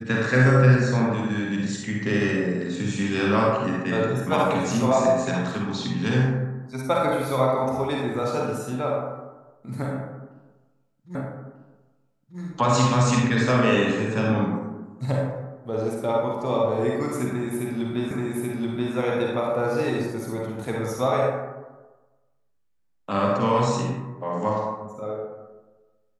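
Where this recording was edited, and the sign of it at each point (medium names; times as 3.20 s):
11.15 s: repeat of the last 1.24 s
18.11 s: repeat of the last 0.83 s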